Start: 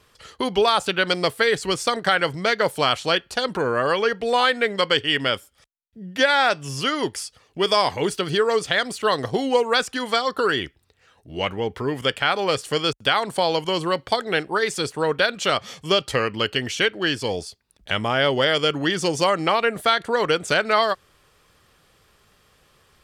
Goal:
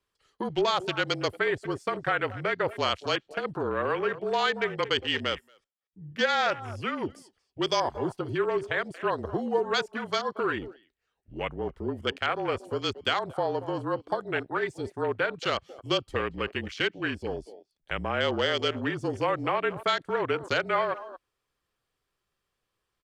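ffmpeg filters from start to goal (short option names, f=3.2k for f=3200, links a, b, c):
-filter_complex "[0:a]asplit=2[a][b];[b]adelay=230,highpass=300,lowpass=3.4k,asoftclip=type=hard:threshold=-14.5dB,volume=-12dB[c];[a][c]amix=inputs=2:normalize=0,afwtdn=0.0447,afreqshift=-34,volume=-7dB"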